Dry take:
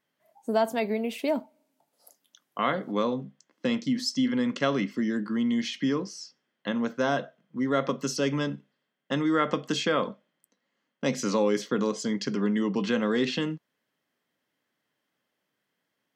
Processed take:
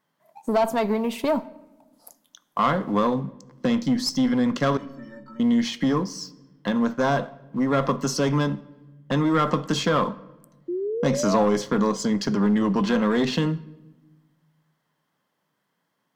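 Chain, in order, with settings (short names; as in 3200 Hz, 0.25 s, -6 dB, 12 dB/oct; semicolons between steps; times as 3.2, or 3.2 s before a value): one diode to ground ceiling -21.5 dBFS; fifteen-band EQ 160 Hz +7 dB, 1000 Hz +8 dB, 2500 Hz -4 dB; in parallel at -2 dB: compressor, threshold -42 dBFS, peak gain reduction 21 dB; on the sum: sample leveller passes 1; 4.77–5.4 metallic resonator 270 Hz, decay 0.3 s, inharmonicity 0.03; 10.68–11.44 painted sound rise 340–740 Hz -27 dBFS; on a send at -17.5 dB: reverb RT60 1.1 s, pre-delay 6 ms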